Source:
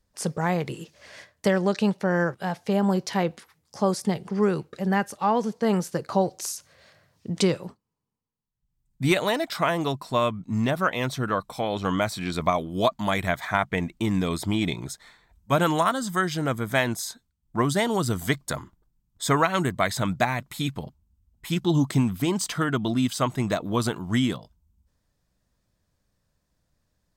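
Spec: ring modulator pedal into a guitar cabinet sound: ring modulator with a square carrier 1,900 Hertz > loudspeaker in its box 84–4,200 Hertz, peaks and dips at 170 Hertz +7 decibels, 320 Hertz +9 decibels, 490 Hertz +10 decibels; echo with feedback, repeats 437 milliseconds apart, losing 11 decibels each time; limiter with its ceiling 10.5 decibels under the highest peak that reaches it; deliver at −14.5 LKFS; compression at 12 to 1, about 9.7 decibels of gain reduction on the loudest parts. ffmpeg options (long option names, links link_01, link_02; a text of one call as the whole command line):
ffmpeg -i in.wav -af "acompressor=threshold=-26dB:ratio=12,alimiter=level_in=0.5dB:limit=-24dB:level=0:latency=1,volume=-0.5dB,aecho=1:1:437|874|1311:0.282|0.0789|0.0221,aeval=exprs='val(0)*sgn(sin(2*PI*1900*n/s))':channel_layout=same,highpass=84,equalizer=frequency=170:width_type=q:width=4:gain=7,equalizer=frequency=320:width_type=q:width=4:gain=9,equalizer=frequency=490:width_type=q:width=4:gain=10,lowpass=frequency=4200:width=0.5412,lowpass=frequency=4200:width=1.3066,volume=19dB" out.wav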